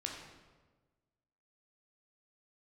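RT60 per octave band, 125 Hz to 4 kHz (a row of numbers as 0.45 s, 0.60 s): 1.6 s, 1.5 s, 1.4 s, 1.2 s, 1.1 s, 0.90 s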